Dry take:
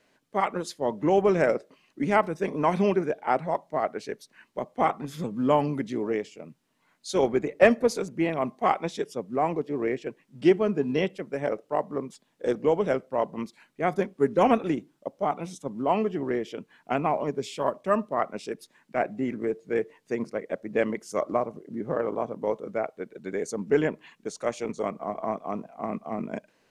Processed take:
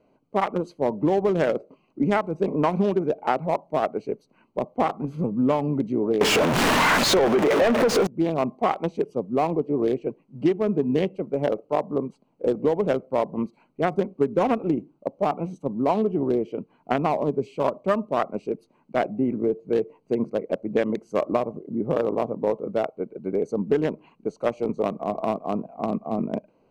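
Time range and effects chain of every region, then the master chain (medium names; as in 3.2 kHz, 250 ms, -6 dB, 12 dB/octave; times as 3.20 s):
6.21–8.07 s: jump at every zero crossing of -20.5 dBFS + overdrive pedal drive 27 dB, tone 1.5 kHz, clips at -3.5 dBFS
whole clip: local Wiener filter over 25 samples; compression 12:1, threshold -24 dBFS; trim +7 dB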